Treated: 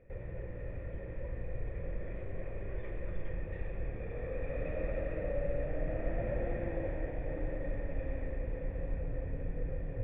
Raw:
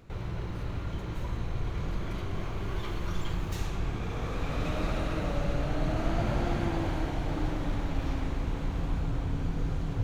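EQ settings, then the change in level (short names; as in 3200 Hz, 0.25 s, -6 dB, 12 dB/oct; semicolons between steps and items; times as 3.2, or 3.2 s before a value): vocal tract filter e; low shelf 100 Hz +11.5 dB; +5.5 dB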